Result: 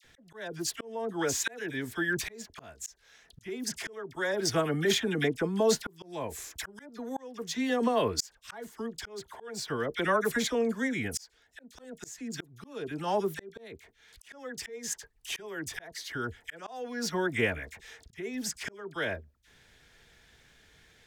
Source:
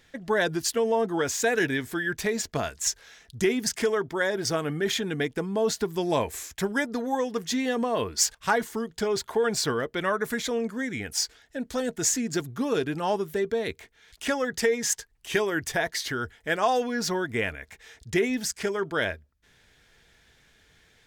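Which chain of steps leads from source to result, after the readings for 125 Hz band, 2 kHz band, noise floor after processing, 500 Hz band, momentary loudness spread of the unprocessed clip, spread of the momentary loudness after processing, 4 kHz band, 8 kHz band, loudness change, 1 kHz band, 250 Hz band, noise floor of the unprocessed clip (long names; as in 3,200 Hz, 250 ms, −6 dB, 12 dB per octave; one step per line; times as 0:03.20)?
−3.5 dB, −5.5 dB, −64 dBFS, −6.0 dB, 7 LU, 17 LU, −4.5 dB, −7.5 dB, −5.5 dB, −6.5 dB, −5.0 dB, −62 dBFS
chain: all-pass dispersion lows, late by 46 ms, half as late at 1,400 Hz
volume swells 665 ms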